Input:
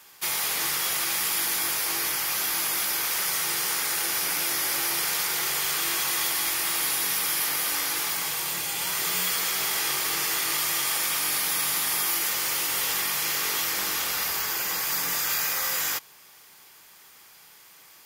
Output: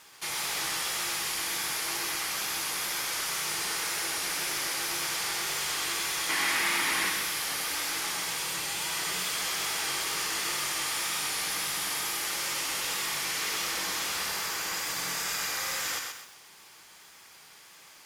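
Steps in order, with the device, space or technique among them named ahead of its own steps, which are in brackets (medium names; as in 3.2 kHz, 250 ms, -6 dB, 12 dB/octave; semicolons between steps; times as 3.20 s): compact cassette (saturation -27.5 dBFS, distortion -11 dB; low-pass 9.7 kHz 12 dB/octave; wow and flutter; white noise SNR 36 dB); 6.29–7.10 s: graphic EQ 250/1000/2000 Hz +10/+4/+9 dB; thinning echo 128 ms, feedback 34%, level -5 dB; bit-crushed delay 95 ms, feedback 35%, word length 8-bit, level -7.5 dB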